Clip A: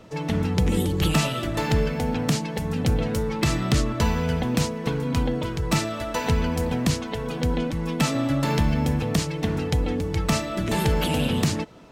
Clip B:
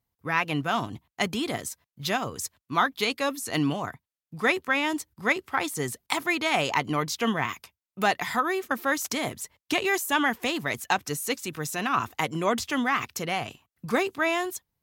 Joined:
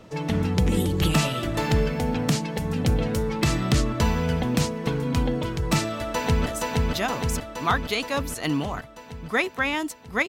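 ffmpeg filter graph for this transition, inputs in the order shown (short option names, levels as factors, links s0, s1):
-filter_complex "[0:a]apad=whole_dur=10.28,atrim=end=10.28,atrim=end=6.462[s0];[1:a]atrim=start=1.558:end=5.38[s1];[s0][s1]acrossfade=d=0.004:c1=hsin:c2=hsin,asplit=2[s2][s3];[s3]afade=t=in:st=5.95:d=0.01,afade=t=out:st=6.46:d=0.01,aecho=0:1:470|940|1410|1880|2350|2820|3290|3760|4230|4700|5170|5640:0.841395|0.588977|0.412284|0.288599|0.202019|0.141413|0.0989893|0.0692925|0.0485048|0.0339533|0.0237673|0.0166371[s4];[s2][s4]amix=inputs=2:normalize=0"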